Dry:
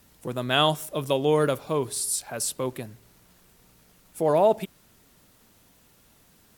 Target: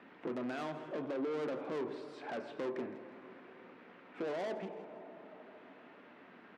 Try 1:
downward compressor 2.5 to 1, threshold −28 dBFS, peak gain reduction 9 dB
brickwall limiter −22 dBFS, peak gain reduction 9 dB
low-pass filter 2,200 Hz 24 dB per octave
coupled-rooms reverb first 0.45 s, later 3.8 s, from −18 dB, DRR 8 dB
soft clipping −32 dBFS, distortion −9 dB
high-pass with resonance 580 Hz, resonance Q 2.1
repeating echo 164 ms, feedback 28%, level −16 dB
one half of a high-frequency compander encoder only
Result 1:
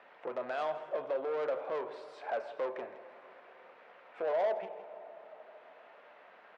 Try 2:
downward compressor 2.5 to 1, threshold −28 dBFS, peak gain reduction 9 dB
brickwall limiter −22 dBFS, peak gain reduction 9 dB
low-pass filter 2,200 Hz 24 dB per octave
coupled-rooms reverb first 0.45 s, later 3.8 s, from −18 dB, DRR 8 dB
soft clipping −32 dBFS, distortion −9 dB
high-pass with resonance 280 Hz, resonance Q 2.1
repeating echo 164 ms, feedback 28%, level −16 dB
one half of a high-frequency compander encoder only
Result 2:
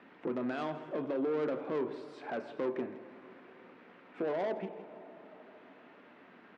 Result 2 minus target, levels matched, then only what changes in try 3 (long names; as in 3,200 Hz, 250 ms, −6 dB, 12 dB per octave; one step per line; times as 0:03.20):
soft clipping: distortion −4 dB
change: soft clipping −38 dBFS, distortion −5 dB